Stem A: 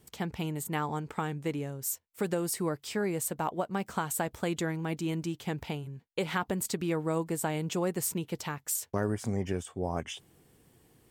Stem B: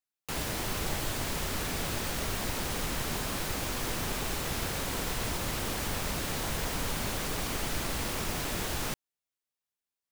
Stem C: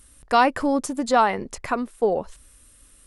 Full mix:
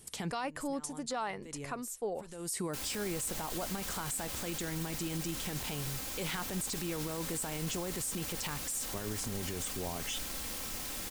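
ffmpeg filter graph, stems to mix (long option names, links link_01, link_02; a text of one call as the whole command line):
ffmpeg -i stem1.wav -i stem2.wav -i stem3.wav -filter_complex "[0:a]alimiter=level_in=2dB:limit=-24dB:level=0:latency=1,volume=-2dB,lowpass=frequency=11000:width=0.5412,lowpass=frequency=11000:width=1.3066,volume=0.5dB[link_01];[1:a]aecho=1:1:3.8:0.48,adelay=2450,volume=-12.5dB[link_02];[2:a]volume=-15dB,asplit=2[link_03][link_04];[link_04]apad=whole_len=489776[link_05];[link_01][link_05]sidechaincompress=threshold=-55dB:ratio=6:attack=35:release=319[link_06];[link_06][link_02][link_03]amix=inputs=3:normalize=0,highshelf=frequency=3500:gain=10.5,alimiter=level_in=3dB:limit=-24dB:level=0:latency=1:release=24,volume=-3dB" out.wav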